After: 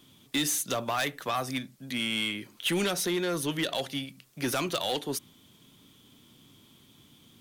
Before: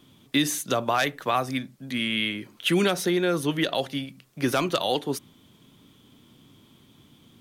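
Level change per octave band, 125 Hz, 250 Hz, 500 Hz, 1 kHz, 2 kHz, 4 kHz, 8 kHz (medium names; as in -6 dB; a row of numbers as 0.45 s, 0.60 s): -6.0 dB, -6.0 dB, -6.0 dB, -6.0 dB, -4.5 dB, -2.5 dB, +1.0 dB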